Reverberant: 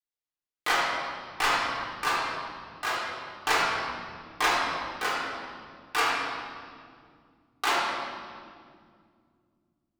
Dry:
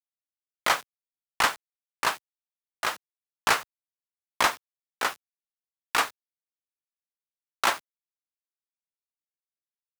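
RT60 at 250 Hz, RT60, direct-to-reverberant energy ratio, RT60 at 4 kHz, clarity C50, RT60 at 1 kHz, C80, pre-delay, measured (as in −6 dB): 3.7 s, 2.2 s, −7.5 dB, 1.6 s, −1.0 dB, 1.9 s, 0.5 dB, 3 ms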